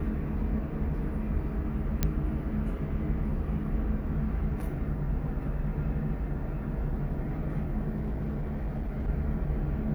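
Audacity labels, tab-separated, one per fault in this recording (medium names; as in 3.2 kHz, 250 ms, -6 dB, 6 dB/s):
2.030000	2.030000	pop -11 dBFS
7.960000	9.090000	clipped -28 dBFS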